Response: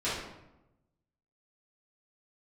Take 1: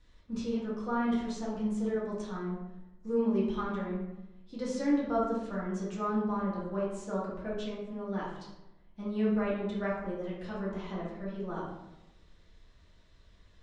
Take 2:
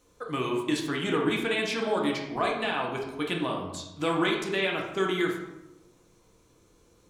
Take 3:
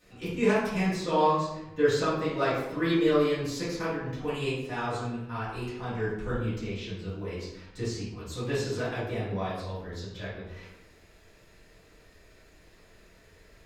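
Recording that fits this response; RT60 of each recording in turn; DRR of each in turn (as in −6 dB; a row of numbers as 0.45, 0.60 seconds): 3; 0.95, 0.95, 0.95 seconds; −7.5, −1.0, −12.5 decibels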